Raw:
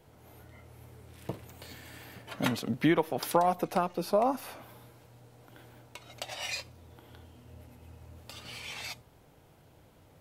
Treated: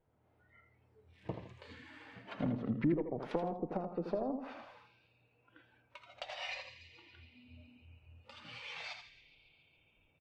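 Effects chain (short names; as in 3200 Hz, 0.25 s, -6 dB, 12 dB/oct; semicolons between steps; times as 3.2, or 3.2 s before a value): one diode to ground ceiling -20 dBFS; low-pass opened by the level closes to 2000 Hz, open at -28 dBFS; narrowing echo 0.139 s, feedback 84%, band-pass 2500 Hz, level -17.5 dB; treble ducked by the level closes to 410 Hz, closed at -27 dBFS; feedback echo 81 ms, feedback 39%, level -7.5 dB; spectral noise reduction 15 dB; gain -3 dB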